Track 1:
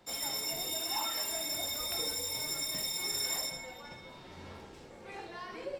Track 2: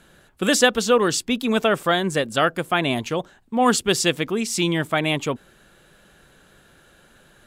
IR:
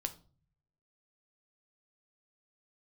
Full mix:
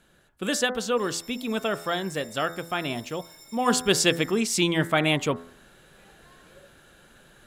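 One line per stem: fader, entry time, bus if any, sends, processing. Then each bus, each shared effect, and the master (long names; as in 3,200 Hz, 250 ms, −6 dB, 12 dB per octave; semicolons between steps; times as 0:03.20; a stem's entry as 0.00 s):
−14.0 dB, 0.90 s, no send, no processing
0:03.40 −7.5 dB → 0:03.97 −0.5 dB, 0.00 s, no send, hum removal 84.02 Hz, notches 25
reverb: not used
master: no processing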